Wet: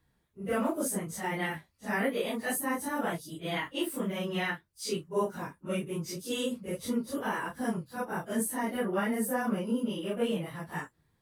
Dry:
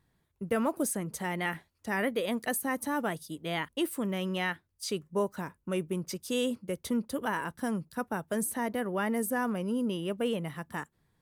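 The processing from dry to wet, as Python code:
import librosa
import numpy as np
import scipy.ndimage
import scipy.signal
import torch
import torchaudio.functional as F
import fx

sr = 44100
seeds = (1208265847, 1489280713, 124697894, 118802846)

y = fx.phase_scramble(x, sr, seeds[0], window_ms=100)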